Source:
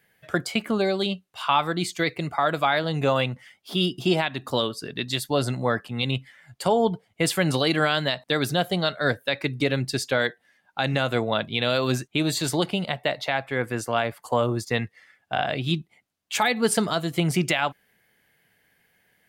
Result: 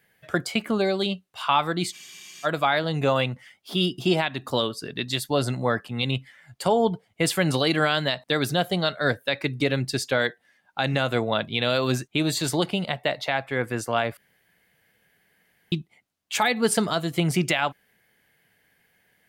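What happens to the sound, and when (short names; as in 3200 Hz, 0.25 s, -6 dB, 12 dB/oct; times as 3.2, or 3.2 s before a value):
1.96 spectral freeze 0.50 s
14.17–15.72 room tone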